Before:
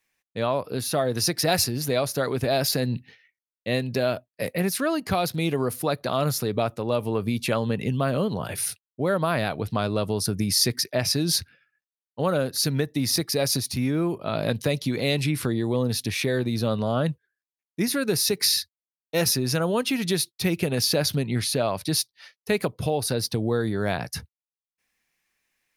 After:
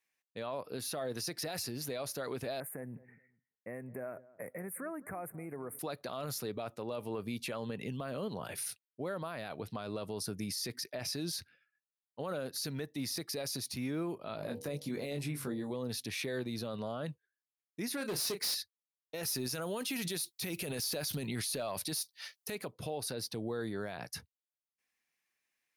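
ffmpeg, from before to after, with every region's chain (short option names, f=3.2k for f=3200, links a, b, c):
-filter_complex "[0:a]asettb=1/sr,asplit=3[a][b][c];[a]atrim=end=2.604[d];[b]atrim=start=2.6:end=5.79,asetpts=PTS-STARTPTS,afade=t=in:d=0.004:c=qsin,afade=t=out:st=3.186:d=0.004:c=qsin,acompressor=threshold=-29dB:ratio=3:attack=3.2:release=140:knee=1:detection=peak,asuperstop=centerf=4300:order=12:qfactor=0.73,asplit=2[e][f];[f]adelay=212,lowpass=f=1k:p=1,volume=-18dB,asplit=2[g][h];[h]adelay=212,lowpass=f=1k:p=1,volume=0.24[i];[e][g][i]amix=inputs=3:normalize=0,atrim=end_sample=140679[j];[c]atrim=start=5.786[k];[d][j]acrossfade=d=0.004:c1=hsin:c2=qsin[l];[l][k]acrossfade=d=0.004:c1=qsin:c2=hsin,asettb=1/sr,asplit=3[m][n][o];[m]atrim=end=14.364[p];[n]atrim=start=14.36:end=15.71,asetpts=PTS-STARTPTS,afade=t=in:d=0.004:c=qsin,afade=t=out:st=1.346:d=0.004:c=qsin,equalizer=f=3.3k:w=0.72:g=-7.5,asplit=2[q][r];[r]adelay=21,volume=-5.5dB[s];[q][s]amix=inputs=2:normalize=0,atrim=end_sample=59535,bandreject=f=68.67:t=h:w=4,bandreject=f=137.34:t=h:w=4,bandreject=f=206.01:t=h:w=4,bandreject=f=274.68:t=h:w=4,bandreject=f=343.35:t=h:w=4,bandreject=f=412.02:t=h:w=4,bandreject=f=480.69:t=h:w=4,bandreject=f=549.36:t=h:w=4,bandreject=f=618.03:t=h:w=4,bandreject=f=686.7:t=h:w=4,bandreject=f=755.37:t=h:w=4,bandreject=f=824.04:t=h:w=4,bandreject=f=892.71:t=h:w=4[t];[o]atrim=start=15.706[u];[p][t]acrossfade=d=0.004:c1=hsin:c2=qsin[v];[v][u]acrossfade=d=0.004:c1=qsin:c2=hsin,asettb=1/sr,asplit=3[w][x][y];[w]atrim=end=17.974[z];[x]atrim=start=17.97:end=18.55,asetpts=PTS-STARTPTS,afade=t=in:d=0.004:c=qsin,afade=t=out:st=0.576:d=0.004:c=qsin,asplit=2[aa][ab];[ab]adelay=32,volume=-9dB[ac];[aa][ac]amix=inputs=2:normalize=0,atrim=end_sample=25578,asoftclip=type=hard:threshold=-22dB[ad];[y]atrim=start=18.546[ae];[z][ad]acrossfade=d=0.004:c1=hsin:c2=qsin[af];[af][ae]acrossfade=d=0.004:c1=qsin:c2=hsin,asettb=1/sr,asplit=3[ag][ah][ai];[ag]atrim=end=19.234[aj];[ah]atrim=start=19.23:end=22.55,asetpts=PTS-STARTPTS,afade=t=in:d=0.004:c=qsin,afade=t=out:st=3.316:d=0.004:c=qsin,highshelf=f=4.9k:g=11.5,acontrast=73[ak];[ai]atrim=start=22.546[al];[aj][ak]acrossfade=d=0.004:c1=hsin:c2=qsin[am];[am][al]acrossfade=d=0.004:c1=qsin:c2=hsin,lowshelf=f=130:g=-12,alimiter=limit=-19.5dB:level=0:latency=1:release=19,volume=-9dB"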